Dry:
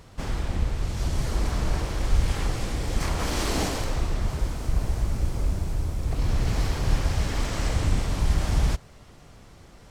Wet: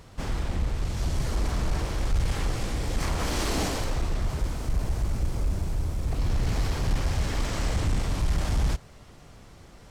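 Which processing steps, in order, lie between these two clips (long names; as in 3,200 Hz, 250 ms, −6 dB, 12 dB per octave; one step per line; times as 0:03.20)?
soft clipping −17 dBFS, distortion −16 dB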